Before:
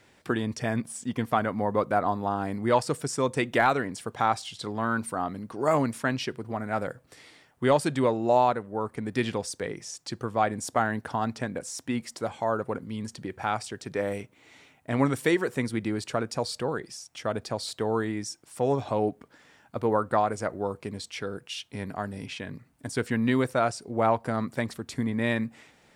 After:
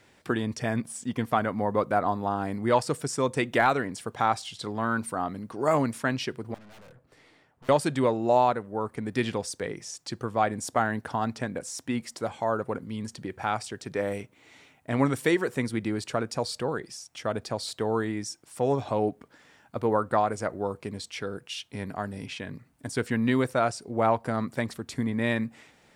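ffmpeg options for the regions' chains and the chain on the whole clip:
-filter_complex "[0:a]asettb=1/sr,asplit=3[a][b][c];[a]atrim=end=6.544[d];[b]atrim=start=6.54:end=7.69,asetpts=PTS-STARTPTS,afade=t=in:d=0.004:c=qsin,afade=t=out:st=1.146:d=0.004:c=qsin,highshelf=f=2.7k:g=-12,aeval=exprs='0.0316*(abs(mod(val(0)/0.0316+3,4)-2)-1)':c=same,aeval=exprs='(tanh(316*val(0)+0.3)-tanh(0.3))/316':c=same[e];[c]atrim=start=7.686[f];[d][e]acrossfade=d=0.004:c1=hsin:c2=qsin[g];[g][f]acrossfade=d=0.004:c1=qsin:c2=hsin"

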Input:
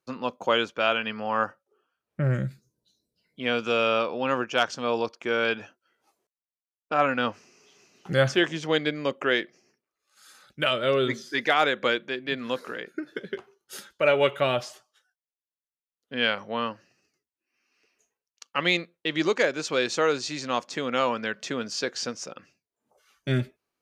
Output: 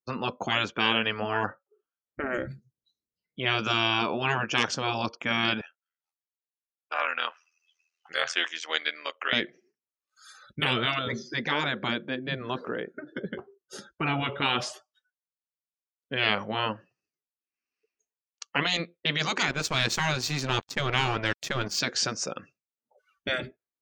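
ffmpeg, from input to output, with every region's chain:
-filter_complex "[0:a]asettb=1/sr,asplit=3[a][b][c];[a]atrim=end=5.614[d];[b]atrim=start=5.61:end=9.33,asetpts=PTS-STARTPTS,afade=t=in:d=0.004:c=qsin,afade=t=out:st=3.716:d=0.004:c=qsin,highpass=1.2k,tremolo=f=83:d=0.824[e];[c]atrim=start=9.326[f];[d][e]acrossfade=d=0.004:c1=hsin:c2=qsin[g];[g][f]acrossfade=d=0.004:c1=qsin:c2=hsin,asettb=1/sr,asplit=3[h][i][j];[h]atrim=end=10.994[k];[i]atrim=start=10.99:end=14.42,asetpts=PTS-STARTPTS,afade=t=in:d=0.004:c=qsin,afade=t=out:st=3.426:d=0.004:c=qsin,lowpass=6.4k,equalizer=f=2.5k:t=o:w=2.1:g=-9[l];[j]atrim=start=14.416[m];[k][l]acrossfade=d=0.004:c1=hsin:c2=qsin[n];[n][m]acrossfade=d=0.004:c1=qsin:c2=hsin,asettb=1/sr,asplit=3[o][p][q];[o]atrim=end=19.484[r];[p]atrim=start=19.48:end=21.8,asetpts=PTS-STARTPTS,afade=t=in:d=0.004:c=qsin,afade=t=out:st=2.316:d=0.004:c=qsin,equalizer=f=83:w=0.34:g=7,aeval=exprs='sgn(val(0))*max(abs(val(0))-0.0112,0)':c=same[s];[q]atrim=start=21.796[t];[r][s]acrossfade=d=0.004:c1=hsin:c2=qsin[u];[u][t]acrossfade=d=0.004:c1=qsin:c2=hsin,afftfilt=real='re*lt(hypot(re,im),0.158)':imag='im*lt(hypot(re,im),0.158)':win_size=1024:overlap=0.75,afftdn=nr=25:nf=-55,lowshelf=f=110:g=6.5,volume=5.5dB"

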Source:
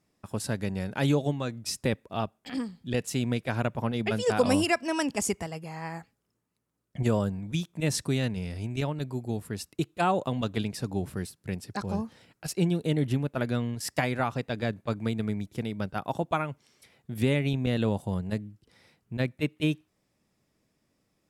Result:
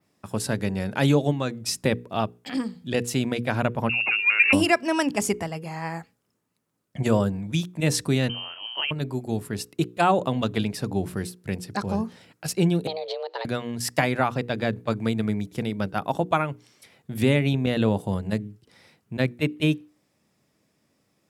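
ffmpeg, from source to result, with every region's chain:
-filter_complex "[0:a]asettb=1/sr,asplit=3[a][b][c];[a]atrim=end=3.894[d];[b]atrim=start=3.89:end=4.53,asetpts=PTS-STARTPTS,afade=t=in:d=0.004:c=qsin,afade=t=out:st=0.636:d=0.004:c=qsin,highshelf=f=2.2k:g=-10,lowpass=f=2.5k:t=q:w=0.5098,lowpass=f=2.5k:t=q:w=0.6013,lowpass=f=2.5k:t=q:w=0.9,lowpass=f=2.5k:t=q:w=2.563,afreqshift=-2900[e];[c]atrim=start=4.526[f];[d][e]acrossfade=d=0.004:c1=hsin:c2=qsin[g];[g][f]acrossfade=d=0.004:c1=qsin:c2=hsin,asettb=1/sr,asplit=3[h][i][j];[h]atrim=end=8.294[k];[i]atrim=start=8.29:end=8.91,asetpts=PTS-STARTPTS,afade=t=in:d=0.004:c=qsin,afade=t=out:st=0.616:d=0.004:c=qsin,highpass=260,lowpass=f=2.8k:t=q:w=0.5098,lowpass=f=2.8k:t=q:w=0.6013,lowpass=f=2.8k:t=q:w=0.9,lowpass=f=2.8k:t=q:w=2.563,afreqshift=-3300[l];[j]atrim=start=8.906[m];[k][l]acrossfade=d=0.004:c1=hsin:c2=qsin[n];[n][m]acrossfade=d=0.004:c1=qsin:c2=hsin,asettb=1/sr,asplit=3[o][p][q];[o]atrim=end=12.874[r];[p]atrim=start=12.87:end=13.45,asetpts=PTS-STARTPTS,afade=t=in:d=0.004:c=qsin,afade=t=out:st=0.576:d=0.004:c=qsin,acompressor=threshold=-33dB:ratio=12:attack=3.2:release=140:knee=1:detection=peak,lowpass=f=4k:t=q:w=9.5,afreqshift=320[s];[q]atrim=start=13.446[t];[r][s]acrossfade=d=0.004:c1=hsin:c2=qsin[u];[u][t]acrossfade=d=0.004:c1=qsin:c2=hsin,highpass=89,bandreject=f=60:t=h:w=6,bandreject=f=120:t=h:w=6,bandreject=f=180:t=h:w=6,bandreject=f=240:t=h:w=6,bandreject=f=300:t=h:w=6,bandreject=f=360:t=h:w=6,bandreject=f=420:t=h:w=6,bandreject=f=480:t=h:w=6,adynamicequalizer=threshold=0.00224:dfrequency=7300:dqfactor=0.95:tfrequency=7300:tqfactor=0.95:attack=5:release=100:ratio=0.375:range=2.5:mode=cutabove:tftype=bell,volume=5.5dB"

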